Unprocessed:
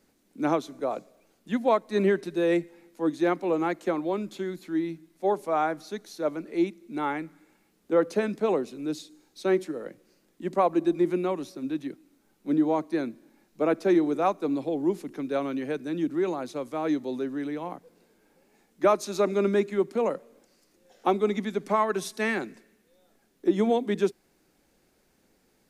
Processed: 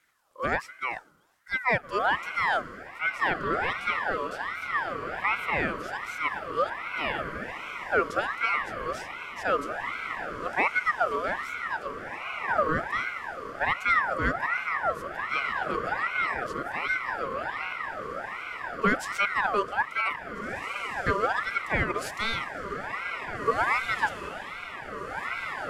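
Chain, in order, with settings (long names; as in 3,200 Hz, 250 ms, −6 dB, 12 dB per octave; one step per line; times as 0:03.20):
feedback delay with all-pass diffusion 1,823 ms, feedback 60%, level −6.5 dB
ring modulator whose carrier an LFO sweeps 1,300 Hz, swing 40%, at 1.3 Hz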